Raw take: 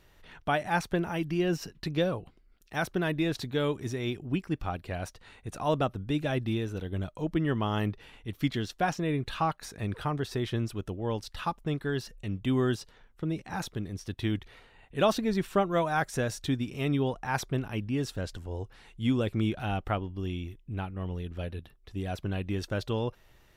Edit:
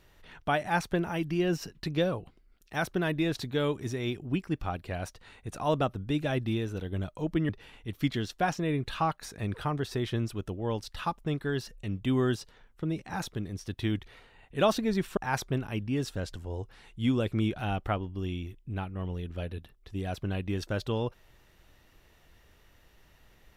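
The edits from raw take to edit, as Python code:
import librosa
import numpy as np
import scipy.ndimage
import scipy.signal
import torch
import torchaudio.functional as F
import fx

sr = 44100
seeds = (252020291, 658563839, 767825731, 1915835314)

y = fx.edit(x, sr, fx.cut(start_s=7.49, length_s=0.4),
    fx.cut(start_s=15.57, length_s=1.61), tone=tone)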